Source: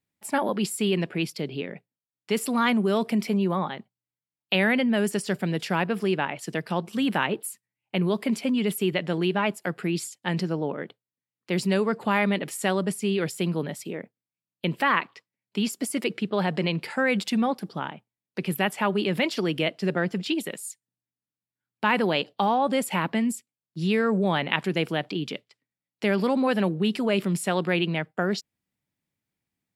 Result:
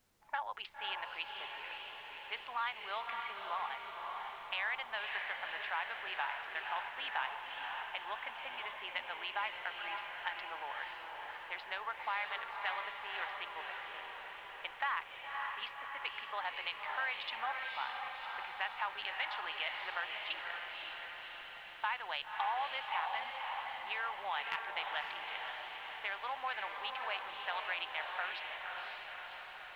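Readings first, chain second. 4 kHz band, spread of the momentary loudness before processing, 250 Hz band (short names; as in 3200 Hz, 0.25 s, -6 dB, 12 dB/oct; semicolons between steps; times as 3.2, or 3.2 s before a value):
-8.5 dB, 10 LU, under -40 dB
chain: Wiener smoothing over 9 samples; Chebyshev band-pass 830–3600 Hz, order 3; de-esser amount 70%; low-pass opened by the level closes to 1100 Hz, open at -26.5 dBFS; compressor 2.5:1, threshold -34 dBFS, peak gain reduction 10 dB; added noise pink -71 dBFS; diffused feedback echo 0.551 s, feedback 65%, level -3.5 dB; gain -3 dB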